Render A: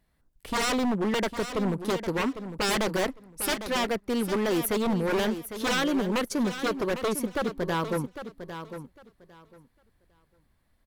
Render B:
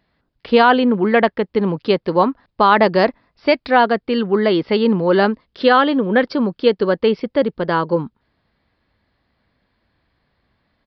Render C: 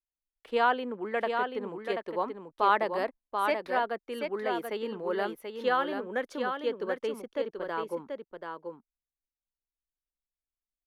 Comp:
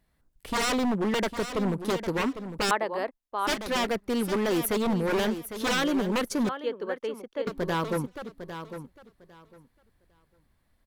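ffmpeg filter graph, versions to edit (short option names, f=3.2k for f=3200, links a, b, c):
-filter_complex "[2:a]asplit=2[a][b];[0:a]asplit=3[c][d][e];[c]atrim=end=2.712[f];[a]atrim=start=2.708:end=3.472[g];[d]atrim=start=3.468:end=6.492[h];[b]atrim=start=6.488:end=7.472[i];[e]atrim=start=7.468[j];[f][g]acrossfade=d=0.004:c1=hsin:c2=hsin[k];[k][h]acrossfade=d=0.004:c1=hsin:c2=hsin[l];[l][i]acrossfade=d=0.004:c1=hsin:c2=hsin[m];[m][j]acrossfade=d=0.004:c1=hsin:c2=hsin"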